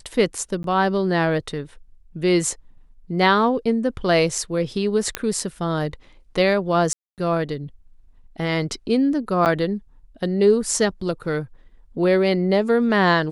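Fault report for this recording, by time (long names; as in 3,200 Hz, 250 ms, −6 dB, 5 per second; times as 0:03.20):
0:00.63–0:00.64: drop-out 12 ms
0:05.15: click −6 dBFS
0:06.93–0:07.18: drop-out 248 ms
0:09.45–0:09.46: drop-out 8.9 ms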